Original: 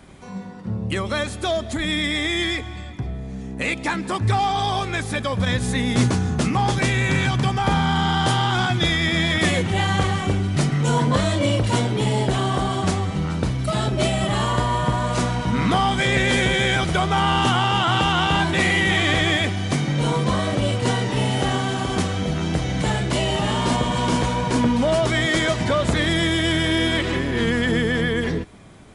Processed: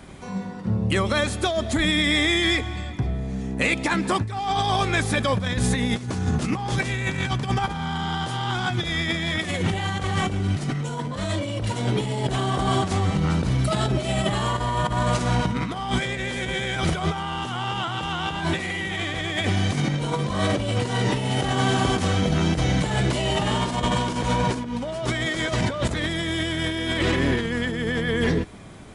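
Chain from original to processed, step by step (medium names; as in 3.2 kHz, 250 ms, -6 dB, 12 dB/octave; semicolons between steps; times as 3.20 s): compressor with a negative ratio -23 dBFS, ratio -0.5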